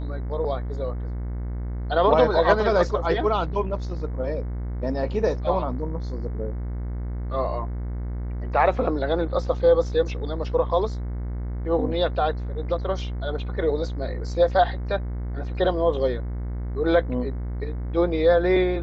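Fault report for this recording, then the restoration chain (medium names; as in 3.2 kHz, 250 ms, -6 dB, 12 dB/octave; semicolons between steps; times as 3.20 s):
buzz 60 Hz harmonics 37 -29 dBFS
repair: de-hum 60 Hz, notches 37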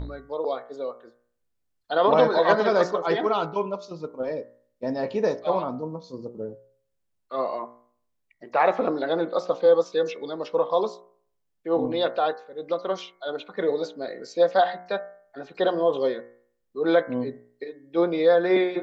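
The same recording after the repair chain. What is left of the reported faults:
nothing left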